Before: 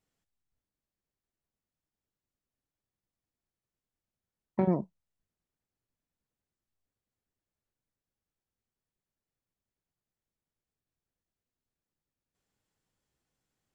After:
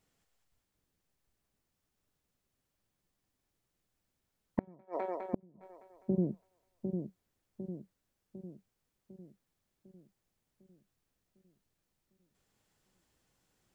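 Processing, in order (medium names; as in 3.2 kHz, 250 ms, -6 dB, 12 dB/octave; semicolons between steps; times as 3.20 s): two-band feedback delay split 460 Hz, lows 752 ms, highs 204 ms, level -4 dB; inverted gate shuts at -24 dBFS, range -36 dB; trim +6.5 dB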